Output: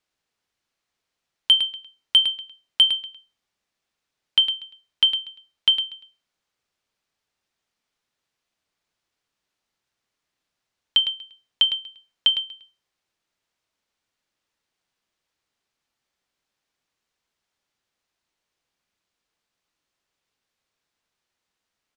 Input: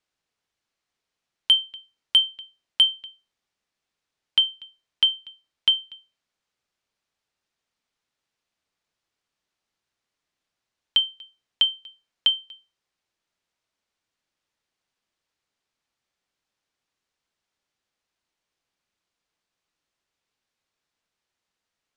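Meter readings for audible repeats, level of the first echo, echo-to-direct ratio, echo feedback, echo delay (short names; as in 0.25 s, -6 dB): 1, -9.5 dB, -9.5 dB, no steady repeat, 0.107 s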